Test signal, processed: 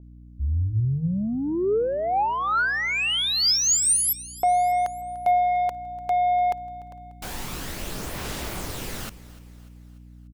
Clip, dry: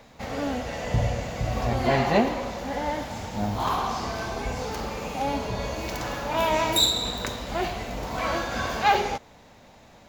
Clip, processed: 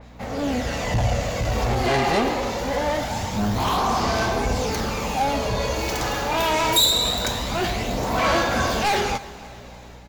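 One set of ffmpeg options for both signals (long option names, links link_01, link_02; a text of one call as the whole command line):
ffmpeg -i in.wav -af "asoftclip=type=tanh:threshold=-24dB,dynaudnorm=framelen=300:gausssize=3:maxgain=7dB,bandreject=frequency=50:width_type=h:width=6,bandreject=frequency=100:width_type=h:width=6,bandreject=frequency=150:width_type=h:width=6,aphaser=in_gain=1:out_gain=1:delay=2.5:decay=0.31:speed=0.24:type=sinusoidal,aeval=exprs='val(0)+0.00631*(sin(2*PI*60*n/s)+sin(2*PI*2*60*n/s)/2+sin(2*PI*3*60*n/s)/3+sin(2*PI*4*60*n/s)/4+sin(2*PI*5*60*n/s)/5)':channel_layout=same,aecho=1:1:295|590|885|1180:0.112|0.0583|0.0303|0.0158,adynamicequalizer=threshold=0.0141:dfrequency=3400:dqfactor=0.7:tfrequency=3400:tqfactor=0.7:attack=5:release=100:ratio=0.375:range=1.5:mode=boostabove:tftype=highshelf" out.wav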